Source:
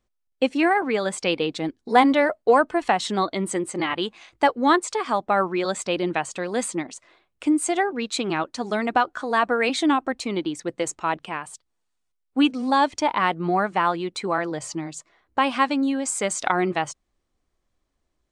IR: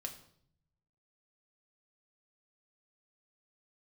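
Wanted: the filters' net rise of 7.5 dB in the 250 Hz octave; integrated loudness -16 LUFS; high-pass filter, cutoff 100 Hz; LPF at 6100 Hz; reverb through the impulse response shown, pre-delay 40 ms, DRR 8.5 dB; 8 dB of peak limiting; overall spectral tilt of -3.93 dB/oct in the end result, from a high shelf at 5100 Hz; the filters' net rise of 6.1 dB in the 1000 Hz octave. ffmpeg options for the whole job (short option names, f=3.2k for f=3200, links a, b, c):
-filter_complex "[0:a]highpass=100,lowpass=6.1k,equalizer=f=250:t=o:g=9,equalizer=f=1k:t=o:g=7,highshelf=f=5.1k:g=4,alimiter=limit=-6.5dB:level=0:latency=1,asplit=2[a][b];[1:a]atrim=start_sample=2205,adelay=40[c];[b][c]afir=irnorm=-1:irlink=0,volume=-6.5dB[d];[a][d]amix=inputs=2:normalize=0,volume=2.5dB"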